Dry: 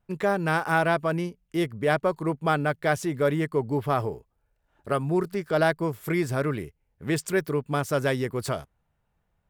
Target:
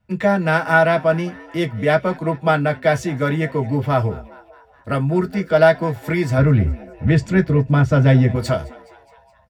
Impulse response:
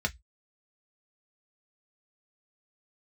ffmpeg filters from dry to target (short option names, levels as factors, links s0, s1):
-filter_complex "[0:a]asettb=1/sr,asplit=3[s0][s1][s2];[s0]atrim=end=6.384[s3];[s1]atrim=start=6.38:end=8.35,asetpts=PTS-STARTPTS,afade=t=in:d=0.004:c=qsin,afade=t=out:st=1.966:d=0.004:c=qsin,aemphasis=mode=reproduction:type=bsi[s4];[s2]atrim=start=8.346[s5];[s3][s4]acrossfade=d=0.004:c1=hsin:c2=qsin[s6];[s6][s5]acrossfade=d=0.004:c1=qsin:c2=hsin,asplit=6[s7][s8][s9][s10][s11][s12];[s8]adelay=209,afreqshift=110,volume=0.0794[s13];[s9]adelay=418,afreqshift=220,volume=0.049[s14];[s10]adelay=627,afreqshift=330,volume=0.0305[s15];[s11]adelay=836,afreqshift=440,volume=0.0188[s16];[s12]adelay=1045,afreqshift=550,volume=0.0117[s17];[s7][s13][s14][s15][s16][s17]amix=inputs=6:normalize=0[s18];[1:a]atrim=start_sample=2205,atrim=end_sample=3528[s19];[s18][s19]afir=irnorm=-1:irlink=0"